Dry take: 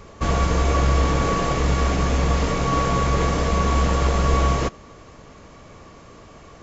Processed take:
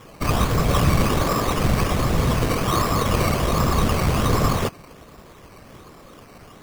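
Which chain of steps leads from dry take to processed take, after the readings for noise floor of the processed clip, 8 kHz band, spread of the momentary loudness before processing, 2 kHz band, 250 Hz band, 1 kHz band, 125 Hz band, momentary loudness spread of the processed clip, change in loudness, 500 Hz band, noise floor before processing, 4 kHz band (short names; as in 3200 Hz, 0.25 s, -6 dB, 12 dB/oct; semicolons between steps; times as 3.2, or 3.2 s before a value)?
-46 dBFS, n/a, 2 LU, +0.5 dB, +2.0 dB, -0.5 dB, 0.0 dB, 3 LU, 0.0 dB, 0.0 dB, -45 dBFS, +2.5 dB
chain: whisperiser; decimation with a swept rate 10×, swing 60% 1.3 Hz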